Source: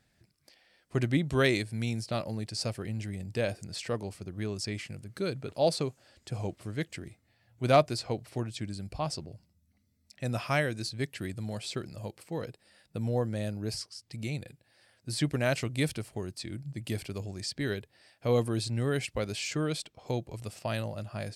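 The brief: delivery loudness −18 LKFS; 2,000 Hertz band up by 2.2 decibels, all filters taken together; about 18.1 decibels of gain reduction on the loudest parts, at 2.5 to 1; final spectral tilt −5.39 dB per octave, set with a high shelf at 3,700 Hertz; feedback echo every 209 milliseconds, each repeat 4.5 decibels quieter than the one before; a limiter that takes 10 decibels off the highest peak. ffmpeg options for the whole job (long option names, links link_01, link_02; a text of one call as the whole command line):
ffmpeg -i in.wav -af "equalizer=frequency=2000:width_type=o:gain=4.5,highshelf=frequency=3700:gain=-7,acompressor=threshold=-45dB:ratio=2.5,alimiter=level_in=13dB:limit=-24dB:level=0:latency=1,volume=-13dB,aecho=1:1:209|418|627|836|1045|1254|1463|1672|1881:0.596|0.357|0.214|0.129|0.0772|0.0463|0.0278|0.0167|0.01,volume=27.5dB" out.wav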